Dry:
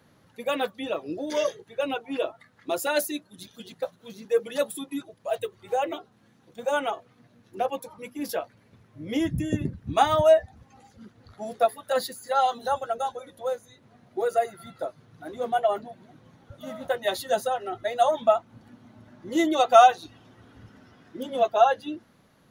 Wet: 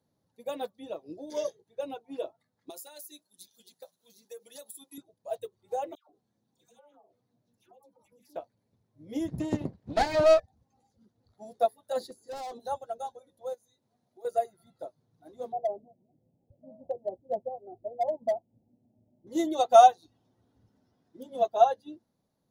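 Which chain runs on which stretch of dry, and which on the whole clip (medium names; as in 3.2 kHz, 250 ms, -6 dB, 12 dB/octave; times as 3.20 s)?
2.70–4.98 s: tilt EQ +3.5 dB/octave + compression 16:1, threshold -29 dBFS
5.95–8.36 s: phase dispersion lows, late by 146 ms, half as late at 1.2 kHz + compression 4:1, threshold -43 dBFS + loudspeaker Doppler distortion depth 0.15 ms
9.28–10.40 s: comb filter that takes the minimum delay 0.43 ms + treble shelf 11 kHz -3.5 dB + overdrive pedal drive 18 dB, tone 2.3 kHz, clips at -8 dBFS
12.00–12.60 s: low-pass 10 kHz + peaking EQ 390 Hz +12 dB 1.3 oct + overload inside the chain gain 27 dB
13.54–14.25 s: tilt EQ +1.5 dB/octave + compression 2:1, threshold -45 dBFS
15.52–19.27 s: steep low-pass 730 Hz + overload inside the chain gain 17 dB
whole clip: high-order bell 1.9 kHz -10 dB; upward expansion 1.5:1, over -45 dBFS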